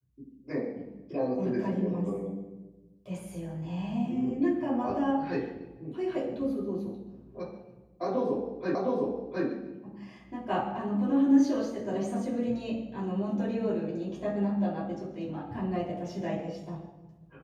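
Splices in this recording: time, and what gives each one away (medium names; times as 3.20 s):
8.75 s: repeat of the last 0.71 s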